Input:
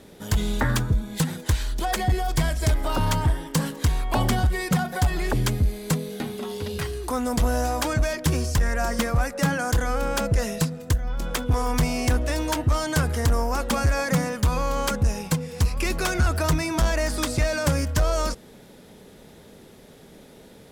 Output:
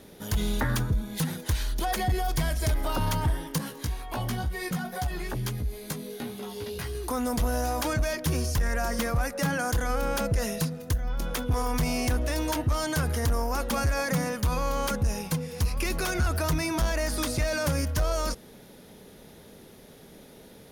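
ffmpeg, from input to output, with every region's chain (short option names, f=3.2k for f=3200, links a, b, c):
-filter_complex "[0:a]asettb=1/sr,asplit=3[a][b][c];[a]atrim=end=3.584[d];[b]atrim=start=3.58:end=6.95,asetpts=PTS-STARTPTS,afade=t=in:d=0.004:c=qsin,afade=t=out:st=3.366:d=0.004:c=qsin,acompressor=threshold=-24dB:ratio=2.5:attack=3.2:release=140:knee=1:detection=peak,flanger=delay=15:depth=2.2:speed=2.1[e];[c]atrim=start=6.946[f];[d][e]acrossfade=d=0.004:c1=hsin:c2=qsin[g];[g][f]acrossfade=d=0.004:c1=qsin:c2=hsin,highshelf=f=8.6k:g=7,bandreject=f=7.7k:w=5.5,alimiter=limit=-17dB:level=0:latency=1:release=31,volume=-2dB"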